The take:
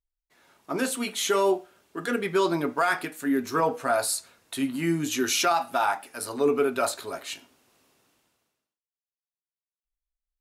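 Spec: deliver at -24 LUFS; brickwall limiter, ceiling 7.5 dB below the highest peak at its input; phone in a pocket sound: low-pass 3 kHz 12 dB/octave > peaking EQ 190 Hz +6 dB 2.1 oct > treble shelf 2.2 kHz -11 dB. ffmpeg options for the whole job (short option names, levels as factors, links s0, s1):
-af "alimiter=limit=0.1:level=0:latency=1,lowpass=3000,equalizer=f=190:t=o:w=2.1:g=6,highshelf=f=2200:g=-11,volume=1.78"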